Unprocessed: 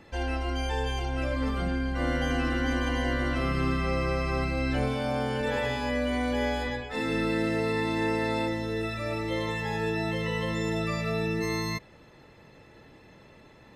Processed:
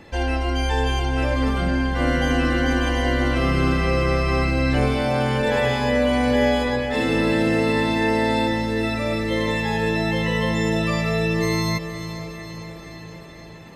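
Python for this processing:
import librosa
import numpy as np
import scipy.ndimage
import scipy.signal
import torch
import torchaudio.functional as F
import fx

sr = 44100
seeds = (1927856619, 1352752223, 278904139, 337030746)

y = fx.peak_eq(x, sr, hz=1300.0, db=-4.0, octaves=0.21)
y = fx.echo_diffused(y, sr, ms=491, feedback_pct=63, wet_db=-11)
y = y * 10.0 ** (7.5 / 20.0)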